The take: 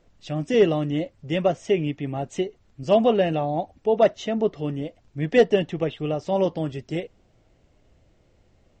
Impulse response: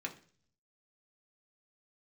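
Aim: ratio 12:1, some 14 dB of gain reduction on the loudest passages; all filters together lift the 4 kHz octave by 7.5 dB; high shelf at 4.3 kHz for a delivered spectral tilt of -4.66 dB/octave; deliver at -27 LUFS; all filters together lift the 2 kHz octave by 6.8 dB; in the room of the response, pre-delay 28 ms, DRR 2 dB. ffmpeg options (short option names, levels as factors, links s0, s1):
-filter_complex "[0:a]equalizer=f=2000:t=o:g=5,equalizer=f=4000:t=o:g=4,highshelf=f=4300:g=8.5,acompressor=threshold=0.0562:ratio=12,asplit=2[s0][s1];[1:a]atrim=start_sample=2205,adelay=28[s2];[s1][s2]afir=irnorm=-1:irlink=0,volume=0.708[s3];[s0][s3]amix=inputs=2:normalize=0,volume=1.33"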